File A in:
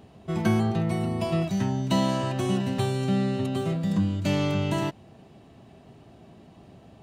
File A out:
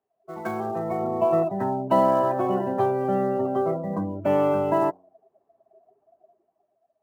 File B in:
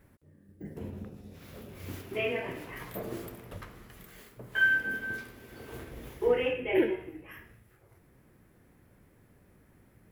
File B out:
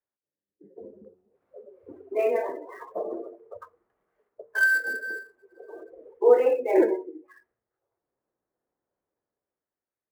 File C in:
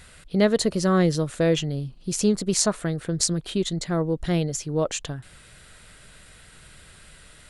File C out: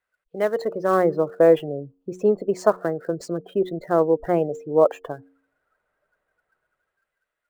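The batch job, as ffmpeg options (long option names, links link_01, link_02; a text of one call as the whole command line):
ffmpeg -i in.wav -filter_complex "[0:a]acrossover=split=390 2100:gain=0.0891 1 0.126[link_01][link_02][link_03];[link_01][link_02][link_03]amix=inputs=3:normalize=0,afftdn=noise_reduction=27:noise_floor=-42,bandreject=frequency=91.57:width_type=h:width=4,bandreject=frequency=183.14:width_type=h:width=4,bandreject=frequency=274.71:width_type=h:width=4,bandreject=frequency=366.28:width_type=h:width=4,bandreject=frequency=457.85:width_type=h:width=4,acrossover=split=1200[link_04][link_05];[link_04]dynaudnorm=framelen=130:gausssize=13:maxgain=12dB[link_06];[link_05]acrusher=bits=2:mode=log:mix=0:aa=0.000001[link_07];[link_06][link_07]amix=inputs=2:normalize=0" out.wav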